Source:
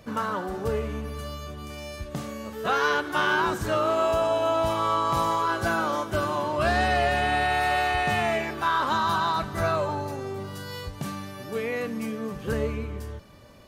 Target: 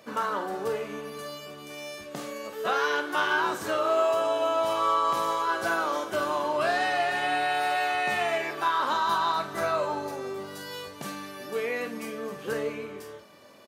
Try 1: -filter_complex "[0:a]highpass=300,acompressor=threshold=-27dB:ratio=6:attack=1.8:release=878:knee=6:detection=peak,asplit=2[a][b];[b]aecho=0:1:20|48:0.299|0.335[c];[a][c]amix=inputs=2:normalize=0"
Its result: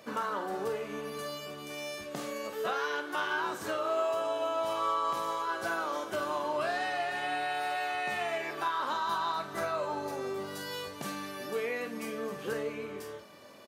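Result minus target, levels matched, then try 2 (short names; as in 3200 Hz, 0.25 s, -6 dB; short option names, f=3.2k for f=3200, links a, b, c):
compressor: peak gain reduction +7 dB
-filter_complex "[0:a]highpass=300,acompressor=threshold=-18dB:ratio=6:attack=1.8:release=878:knee=6:detection=peak,asplit=2[a][b];[b]aecho=0:1:20|48:0.299|0.335[c];[a][c]amix=inputs=2:normalize=0"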